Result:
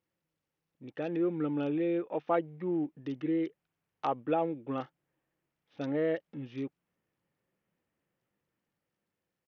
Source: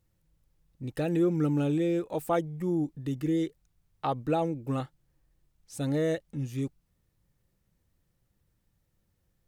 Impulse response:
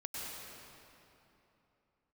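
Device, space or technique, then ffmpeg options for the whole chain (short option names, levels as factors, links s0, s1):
Bluetooth headset: -af "highpass=250,dynaudnorm=f=390:g=7:m=1.58,aresample=8000,aresample=44100,volume=0.562" -ar 48000 -c:a sbc -b:a 64k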